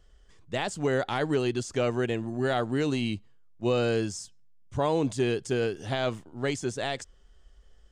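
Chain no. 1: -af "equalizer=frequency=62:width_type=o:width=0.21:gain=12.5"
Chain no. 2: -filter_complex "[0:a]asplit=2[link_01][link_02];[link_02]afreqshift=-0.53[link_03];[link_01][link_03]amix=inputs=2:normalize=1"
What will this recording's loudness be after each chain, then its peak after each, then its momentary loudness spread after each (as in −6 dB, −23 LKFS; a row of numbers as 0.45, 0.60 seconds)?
−29.0, −32.0 LKFS; −15.0, −17.5 dBFS; 8, 9 LU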